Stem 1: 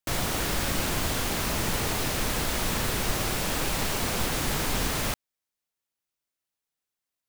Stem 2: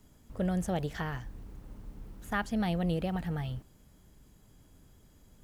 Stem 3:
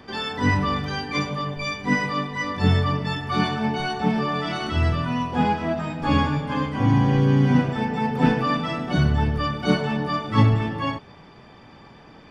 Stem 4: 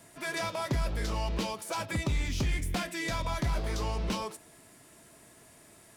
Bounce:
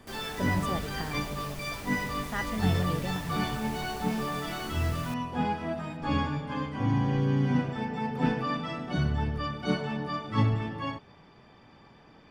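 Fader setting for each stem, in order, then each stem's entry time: −16.0, −3.0, −8.0, −14.0 decibels; 0.00, 0.00, 0.00, 0.00 seconds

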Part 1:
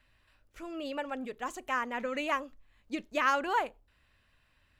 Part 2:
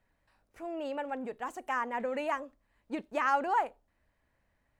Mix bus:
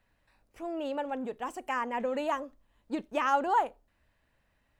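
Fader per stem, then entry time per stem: −10.0, +1.5 decibels; 0.00, 0.00 seconds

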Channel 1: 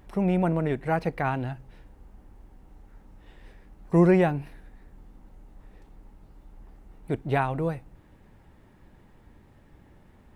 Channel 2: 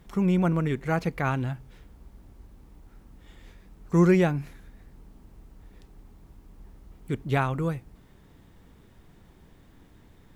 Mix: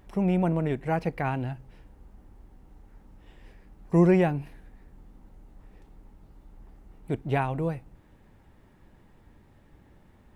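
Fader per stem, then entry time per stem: −2.0, −15.5 decibels; 0.00, 0.00 seconds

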